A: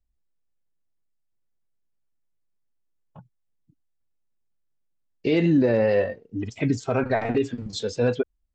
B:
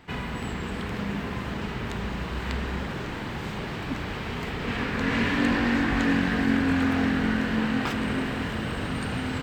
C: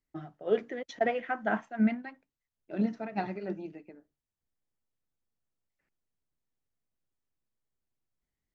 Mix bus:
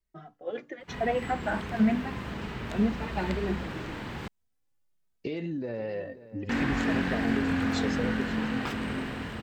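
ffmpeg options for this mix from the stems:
ffmpeg -i stem1.wav -i stem2.wav -i stem3.wav -filter_complex "[0:a]acompressor=threshold=-27dB:ratio=6,volume=-9.5dB,asplit=2[link_01][link_02];[link_02]volume=-16dB[link_03];[1:a]adelay=800,volume=-9.5dB,asplit=3[link_04][link_05][link_06];[link_04]atrim=end=4.28,asetpts=PTS-STARTPTS,afade=type=out:start_time=4.276:duration=0.004:curve=hsin[link_07];[link_05]atrim=start=4.28:end=6.49,asetpts=PTS-STARTPTS,volume=0[link_08];[link_06]atrim=start=6.49,asetpts=PTS-STARTPTS,afade=type=in:duration=0.004:curve=hsin[link_09];[link_07][link_08][link_09]concat=n=3:v=0:a=1[link_10];[2:a]alimiter=limit=-23dB:level=0:latency=1:release=12,asplit=2[link_11][link_12];[link_12]adelay=2.8,afreqshift=1.2[link_13];[link_11][link_13]amix=inputs=2:normalize=1,volume=2dB[link_14];[link_03]aecho=0:1:530:1[link_15];[link_01][link_10][link_14][link_15]amix=inputs=4:normalize=0,dynaudnorm=framelen=130:gausssize=17:maxgain=5dB" out.wav

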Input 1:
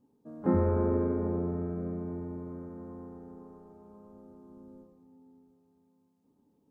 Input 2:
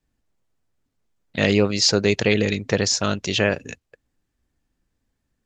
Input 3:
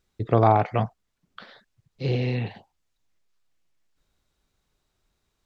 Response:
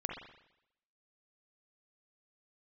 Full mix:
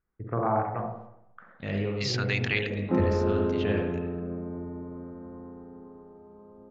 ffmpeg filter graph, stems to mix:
-filter_complex "[0:a]adelay=2450,volume=-1.5dB,asplit=2[link_01][link_02];[link_02]volume=-7dB[link_03];[1:a]lowshelf=frequency=160:gain=10.5,dynaudnorm=framelen=160:gausssize=7:maxgain=13dB,adelay=250,volume=1.5dB,asplit=2[link_04][link_05];[link_05]volume=-17.5dB[link_06];[2:a]lowpass=frequency=1500:width=0.5412,lowpass=frequency=1500:width=1.3066,volume=-1.5dB,asplit=3[link_07][link_08][link_09];[link_08]volume=-7dB[link_10];[link_09]apad=whole_len=251442[link_11];[link_04][link_11]sidechaingate=range=-33dB:threshold=-52dB:ratio=16:detection=peak[link_12];[link_12][link_07]amix=inputs=2:normalize=0,highpass=1300,alimiter=limit=-12.5dB:level=0:latency=1:release=125,volume=0dB[link_13];[3:a]atrim=start_sample=2205[link_14];[link_03][link_06][link_10]amix=inputs=3:normalize=0[link_15];[link_15][link_14]afir=irnorm=-1:irlink=0[link_16];[link_01][link_13][link_16]amix=inputs=3:normalize=0,lowpass=2700"

